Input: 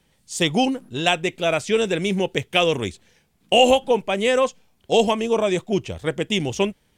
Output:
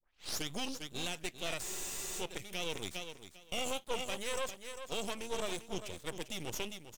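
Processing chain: tape start at the beginning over 0.48 s; pre-emphasis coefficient 0.8; feedback echo 0.398 s, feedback 17%, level -11.5 dB; limiter -23 dBFS, peak gain reduction 11.5 dB; half-wave rectifier; spectral freeze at 1.65, 0.55 s

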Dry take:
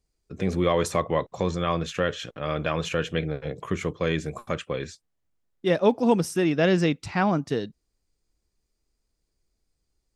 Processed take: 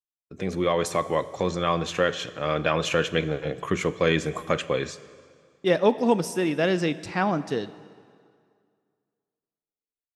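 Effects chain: vocal rider 2 s; expander -43 dBFS; low shelf 150 Hz -8.5 dB; plate-style reverb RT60 2.1 s, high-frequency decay 0.85×, DRR 14.5 dB; gain +1 dB

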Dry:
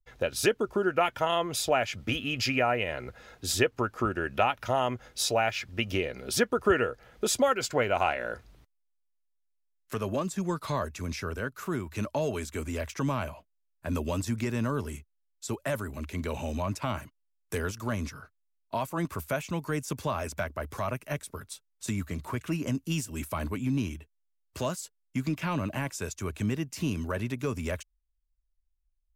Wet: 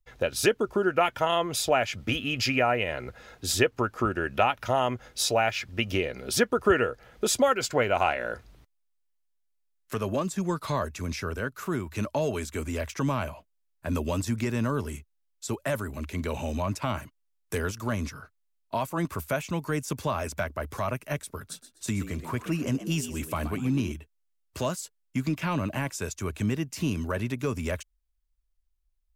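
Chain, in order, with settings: 21.37–23.92 frequency-shifting echo 0.125 s, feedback 31%, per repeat +77 Hz, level -12 dB; gain +2 dB

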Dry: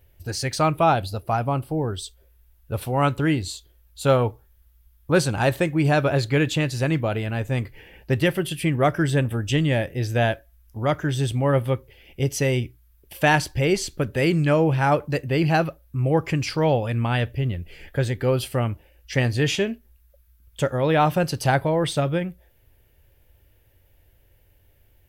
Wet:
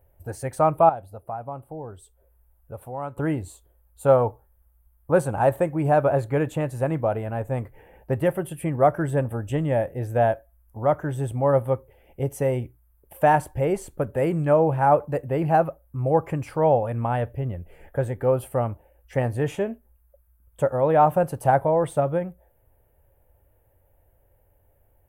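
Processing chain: EQ curve 370 Hz 0 dB, 530 Hz +7 dB, 850 Hz +8 dB, 4800 Hz -21 dB, 8900 Hz -1 dB; 0.89–3.17 compressor 1.5:1, threshold -46 dBFS, peak gain reduction 13 dB; gain -4 dB

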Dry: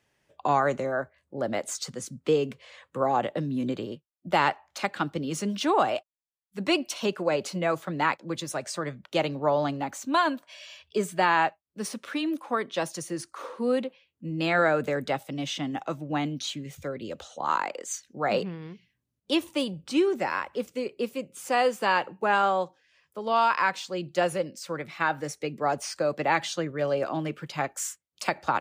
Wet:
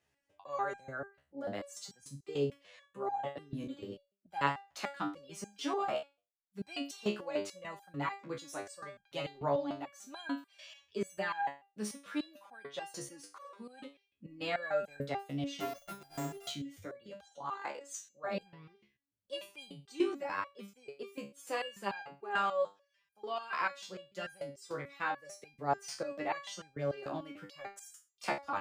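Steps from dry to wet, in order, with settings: 15.6–16.47 sample sorter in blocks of 64 samples; stepped resonator 6.8 Hz 70–800 Hz; gain +1 dB

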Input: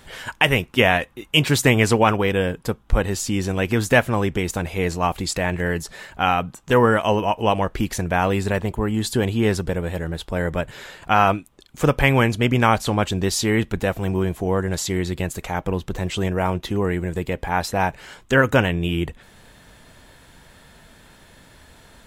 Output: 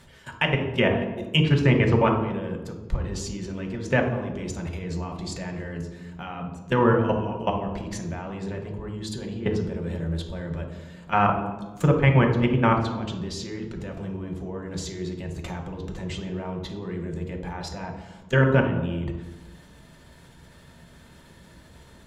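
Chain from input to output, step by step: treble ducked by the level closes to 2600 Hz, closed at -13.5 dBFS; bell 92 Hz -3.5 dB 0.29 oct; notch 770 Hz, Q 12; level quantiser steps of 17 dB; on a send: reverb RT60 1.2 s, pre-delay 3 ms, DRR 1.5 dB; on the sum: gain -4 dB

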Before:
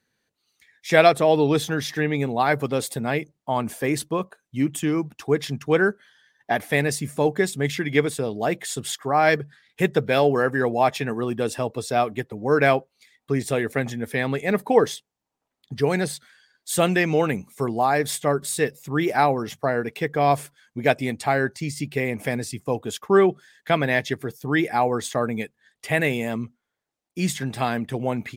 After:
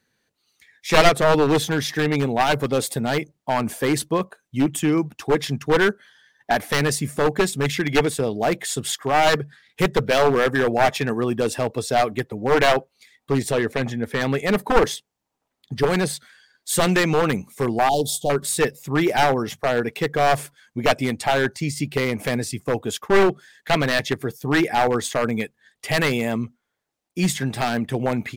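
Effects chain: one-sided fold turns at -16 dBFS; 13.5–14.2 high shelf 6800 Hz -> 4500 Hz -10 dB; 17.89–18.3 elliptic band-stop 820–3300 Hz, stop band 40 dB; gain +3.5 dB

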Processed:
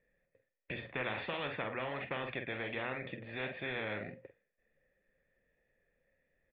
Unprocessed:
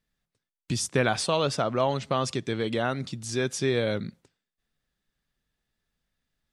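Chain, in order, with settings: vocal tract filter e; flange 1.4 Hz, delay 1.6 ms, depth 9.6 ms, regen -68%; notches 60/120 Hz; doubler 47 ms -10 dB; spectral compressor 4:1

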